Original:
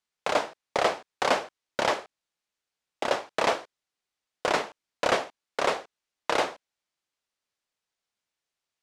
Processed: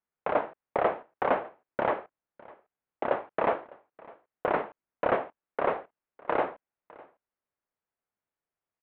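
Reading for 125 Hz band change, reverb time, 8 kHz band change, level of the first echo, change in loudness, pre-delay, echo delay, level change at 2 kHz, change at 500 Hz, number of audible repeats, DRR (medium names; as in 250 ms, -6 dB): 0.0 dB, no reverb, under -40 dB, -23.0 dB, -2.0 dB, no reverb, 605 ms, -5.5 dB, -0.5 dB, 1, no reverb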